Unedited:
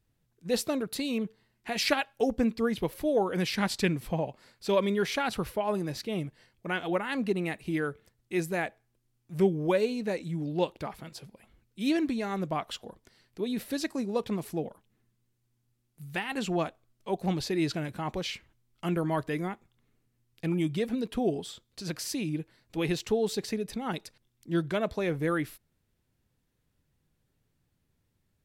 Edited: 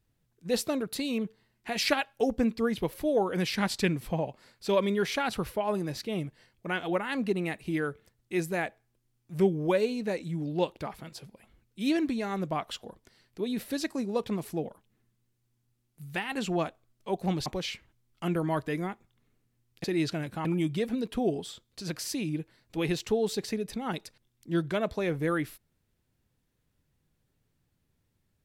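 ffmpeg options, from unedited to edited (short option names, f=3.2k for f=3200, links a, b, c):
-filter_complex "[0:a]asplit=4[a][b][c][d];[a]atrim=end=17.462[e];[b]atrim=start=18.068:end=20.452[f];[c]atrim=start=17.458:end=18.072[g];[d]atrim=start=20.448[h];[e][f]acrossfade=d=0.004:c1=hsin:c2=hsin[i];[i][g]acrossfade=d=0.004:c1=hsin:c2=hsin[j];[j][h]acrossfade=d=0.004:c1=hsin:c2=hsin"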